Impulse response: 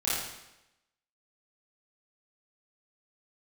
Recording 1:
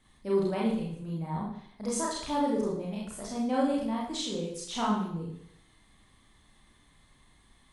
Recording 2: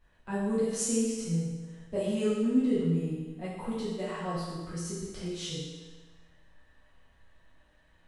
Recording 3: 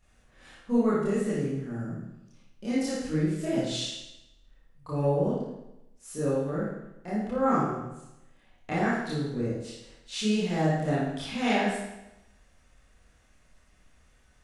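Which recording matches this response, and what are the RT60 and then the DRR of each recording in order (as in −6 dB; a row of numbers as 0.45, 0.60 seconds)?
3; 0.70, 1.3, 0.90 seconds; −5.0, −10.5, −10.5 decibels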